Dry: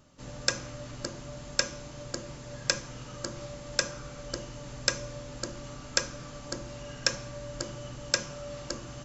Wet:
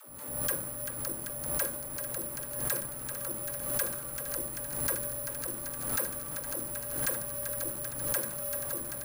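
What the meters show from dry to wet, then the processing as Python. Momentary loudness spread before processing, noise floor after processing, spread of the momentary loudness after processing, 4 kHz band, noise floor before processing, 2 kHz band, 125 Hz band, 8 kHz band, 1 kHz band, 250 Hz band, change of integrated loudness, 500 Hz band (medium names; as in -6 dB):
12 LU, -40 dBFS, 4 LU, -13.5 dB, -45 dBFS, -5.0 dB, -3.0 dB, no reading, -0.5 dB, -2.0 dB, +1.5 dB, -1.0 dB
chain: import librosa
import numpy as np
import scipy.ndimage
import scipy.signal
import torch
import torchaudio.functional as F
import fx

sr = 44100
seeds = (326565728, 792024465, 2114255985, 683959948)

p1 = scipy.ndimage.median_filter(x, 15, mode='constant')
p2 = fx.dispersion(p1, sr, late='lows', ms=94.0, hz=330.0)
p3 = p2 + fx.echo_thinned(p2, sr, ms=389, feedback_pct=84, hz=420.0, wet_db=-10.5, dry=0)
p4 = np.clip(p3, -10.0 ** (-27.5 / 20.0), 10.0 ** (-27.5 / 20.0))
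p5 = fx.transient(p4, sr, attack_db=-2, sustain_db=2)
p6 = fx.low_shelf(p5, sr, hz=310.0, db=-6.0)
p7 = (np.kron(scipy.signal.resample_poly(p6, 1, 4), np.eye(4)[0]) * 4)[:len(p6)]
y = fx.pre_swell(p7, sr, db_per_s=50.0)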